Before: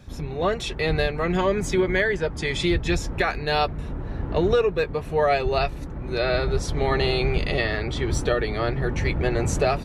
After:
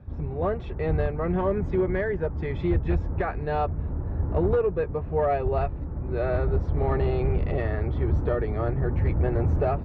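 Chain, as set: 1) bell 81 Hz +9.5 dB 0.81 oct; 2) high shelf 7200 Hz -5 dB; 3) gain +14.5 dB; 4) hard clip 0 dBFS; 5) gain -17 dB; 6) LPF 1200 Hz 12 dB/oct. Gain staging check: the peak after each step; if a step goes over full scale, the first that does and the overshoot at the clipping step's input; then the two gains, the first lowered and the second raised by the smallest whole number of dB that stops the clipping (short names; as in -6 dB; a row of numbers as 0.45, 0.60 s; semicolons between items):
-7.5, -7.5, +7.0, 0.0, -17.0, -16.5 dBFS; step 3, 7.0 dB; step 3 +7.5 dB, step 5 -10 dB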